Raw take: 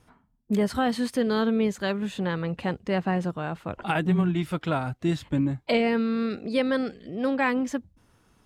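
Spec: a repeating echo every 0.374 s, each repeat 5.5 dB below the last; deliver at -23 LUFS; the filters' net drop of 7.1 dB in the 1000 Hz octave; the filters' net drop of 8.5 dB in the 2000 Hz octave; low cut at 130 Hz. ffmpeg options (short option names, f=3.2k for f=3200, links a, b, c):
-af "highpass=130,equalizer=f=1k:t=o:g=-8.5,equalizer=f=2k:t=o:g=-8,aecho=1:1:374|748|1122|1496|1870|2244|2618:0.531|0.281|0.149|0.079|0.0419|0.0222|0.0118,volume=4.5dB"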